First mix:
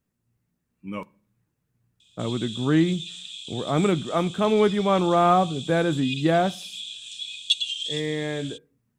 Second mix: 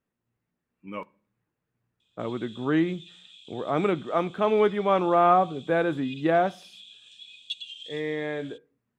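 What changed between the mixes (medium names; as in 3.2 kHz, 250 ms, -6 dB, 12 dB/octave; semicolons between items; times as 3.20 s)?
background -7.5 dB; master: add tone controls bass -10 dB, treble -13 dB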